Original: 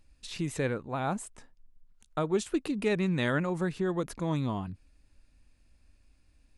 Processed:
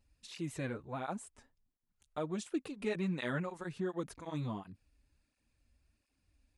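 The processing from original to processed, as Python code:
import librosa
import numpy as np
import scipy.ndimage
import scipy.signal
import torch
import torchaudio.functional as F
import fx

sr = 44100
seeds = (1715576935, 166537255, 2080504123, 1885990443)

y = fx.flanger_cancel(x, sr, hz=1.4, depth_ms=6.7)
y = F.gain(torch.from_numpy(y), -5.0).numpy()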